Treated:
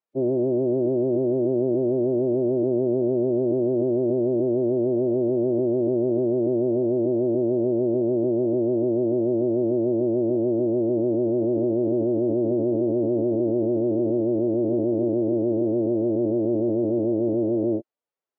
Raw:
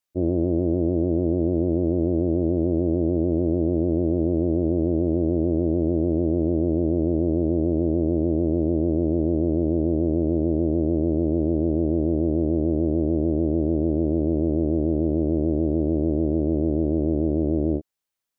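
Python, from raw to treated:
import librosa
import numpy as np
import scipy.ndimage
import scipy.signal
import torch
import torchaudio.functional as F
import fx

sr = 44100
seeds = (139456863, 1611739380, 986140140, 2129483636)

y = fx.bandpass_q(x, sr, hz=520.0, q=0.76)
y = fx.pitch_keep_formants(y, sr, semitones=6.5)
y = F.gain(torch.from_numpy(y), 3.0).numpy()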